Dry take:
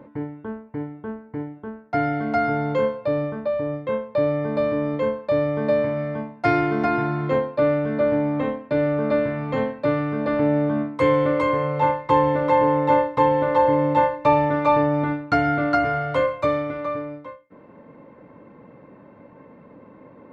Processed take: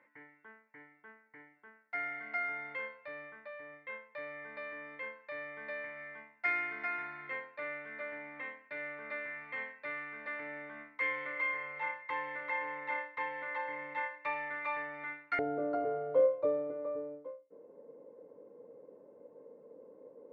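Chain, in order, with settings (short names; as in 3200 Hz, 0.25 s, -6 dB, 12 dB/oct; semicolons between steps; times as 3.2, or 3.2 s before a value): band-pass 2000 Hz, Q 5.7, from 15.39 s 470 Hz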